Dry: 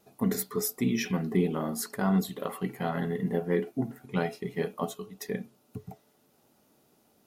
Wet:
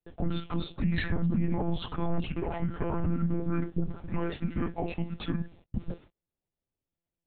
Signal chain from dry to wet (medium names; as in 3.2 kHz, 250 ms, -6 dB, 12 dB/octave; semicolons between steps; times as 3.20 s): gate -58 dBFS, range -36 dB; in parallel at +2 dB: compression, threshold -35 dBFS, peak gain reduction 14 dB; on the sum: peak limiter -22.5 dBFS, peak gain reduction 11 dB; formant shift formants -6 st; distance through air 70 m; monotone LPC vocoder at 8 kHz 170 Hz; trim +4 dB